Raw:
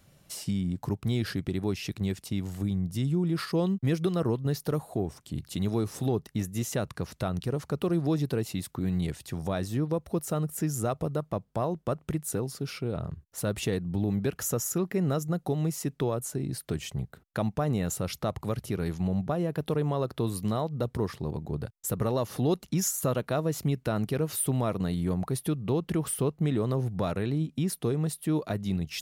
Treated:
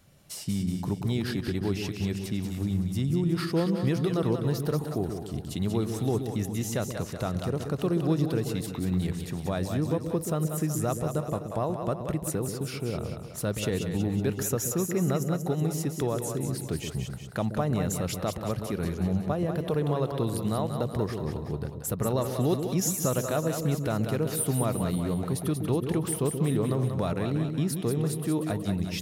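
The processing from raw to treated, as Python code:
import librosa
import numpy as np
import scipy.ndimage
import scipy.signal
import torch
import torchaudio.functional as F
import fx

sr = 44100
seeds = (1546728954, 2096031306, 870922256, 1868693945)

y = fx.echo_split(x, sr, split_hz=480.0, low_ms=129, high_ms=186, feedback_pct=52, wet_db=-6.0)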